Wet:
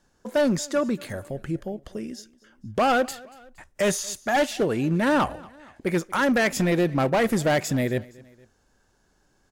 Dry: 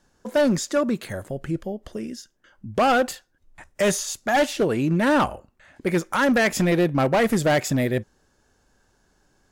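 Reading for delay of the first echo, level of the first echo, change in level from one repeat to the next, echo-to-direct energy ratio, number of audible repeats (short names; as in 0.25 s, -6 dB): 0.234 s, -23.0 dB, -5.5 dB, -22.0 dB, 2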